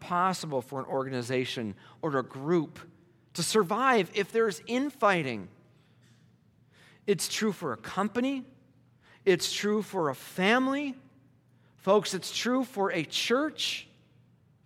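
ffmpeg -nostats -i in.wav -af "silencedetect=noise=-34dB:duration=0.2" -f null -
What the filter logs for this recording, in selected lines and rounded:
silence_start: 1.72
silence_end: 2.04 | silence_duration: 0.32
silence_start: 2.77
silence_end: 3.36 | silence_duration: 0.59
silence_start: 5.43
silence_end: 7.08 | silence_duration: 1.65
silence_start: 8.40
silence_end: 9.27 | silence_duration: 0.87
silence_start: 10.91
silence_end: 11.87 | silence_duration: 0.96
silence_start: 13.80
silence_end: 14.66 | silence_duration: 0.86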